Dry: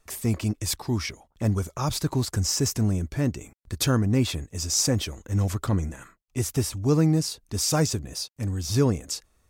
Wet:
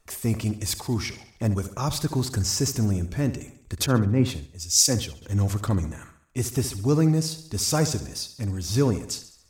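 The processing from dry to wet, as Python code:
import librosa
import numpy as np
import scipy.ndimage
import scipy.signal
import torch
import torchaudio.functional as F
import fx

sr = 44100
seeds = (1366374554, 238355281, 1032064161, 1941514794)

y = fx.echo_feedback(x, sr, ms=69, feedback_pct=53, wet_db=-13)
y = fx.band_widen(y, sr, depth_pct=100, at=(3.86, 5.22))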